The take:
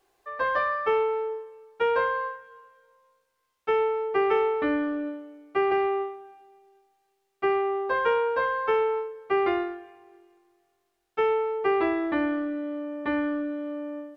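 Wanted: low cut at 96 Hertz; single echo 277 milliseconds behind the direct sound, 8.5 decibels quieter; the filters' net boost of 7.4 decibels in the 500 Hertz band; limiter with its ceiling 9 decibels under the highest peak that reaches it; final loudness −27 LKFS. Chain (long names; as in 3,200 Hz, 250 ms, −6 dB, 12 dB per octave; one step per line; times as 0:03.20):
high-pass filter 96 Hz
parametric band 500 Hz +9 dB
brickwall limiter −15.5 dBFS
single-tap delay 277 ms −8.5 dB
level −4 dB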